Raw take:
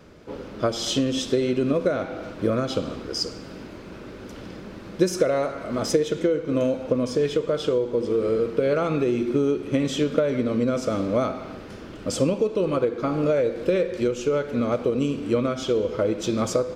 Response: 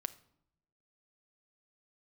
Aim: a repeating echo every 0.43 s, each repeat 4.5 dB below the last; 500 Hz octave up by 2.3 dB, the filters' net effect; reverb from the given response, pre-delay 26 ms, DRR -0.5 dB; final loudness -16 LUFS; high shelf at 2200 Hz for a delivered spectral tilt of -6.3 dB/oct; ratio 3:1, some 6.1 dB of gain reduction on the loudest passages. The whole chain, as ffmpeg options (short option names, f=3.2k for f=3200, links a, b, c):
-filter_complex "[0:a]equalizer=f=500:t=o:g=3,highshelf=f=2.2k:g=-7,acompressor=threshold=-22dB:ratio=3,aecho=1:1:430|860|1290|1720|2150|2580|3010|3440|3870:0.596|0.357|0.214|0.129|0.0772|0.0463|0.0278|0.0167|0.01,asplit=2[a][b];[1:a]atrim=start_sample=2205,adelay=26[c];[b][c]afir=irnorm=-1:irlink=0,volume=2dB[d];[a][d]amix=inputs=2:normalize=0,volume=5.5dB"